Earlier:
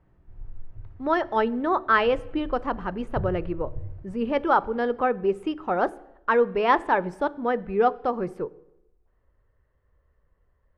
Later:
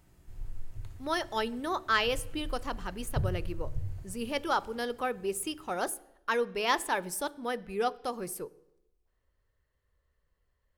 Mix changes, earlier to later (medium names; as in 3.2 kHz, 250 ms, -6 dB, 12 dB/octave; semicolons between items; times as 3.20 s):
speech -9.5 dB; master: remove low-pass 1.5 kHz 12 dB/octave